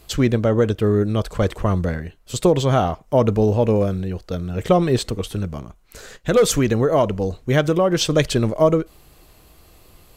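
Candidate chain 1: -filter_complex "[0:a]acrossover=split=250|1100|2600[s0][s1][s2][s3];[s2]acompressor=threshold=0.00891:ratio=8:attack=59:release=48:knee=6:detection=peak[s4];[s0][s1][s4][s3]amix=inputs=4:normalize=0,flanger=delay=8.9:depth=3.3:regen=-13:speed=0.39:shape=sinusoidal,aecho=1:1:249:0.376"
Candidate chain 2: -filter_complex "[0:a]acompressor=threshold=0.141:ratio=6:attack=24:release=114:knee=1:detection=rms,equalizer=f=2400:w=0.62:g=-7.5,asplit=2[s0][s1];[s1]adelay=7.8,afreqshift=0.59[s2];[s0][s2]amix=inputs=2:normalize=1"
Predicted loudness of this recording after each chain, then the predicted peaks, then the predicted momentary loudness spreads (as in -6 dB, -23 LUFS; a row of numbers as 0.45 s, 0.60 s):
-22.5 LUFS, -26.0 LUFS; -7.0 dBFS, -10.5 dBFS; 9 LU, 10 LU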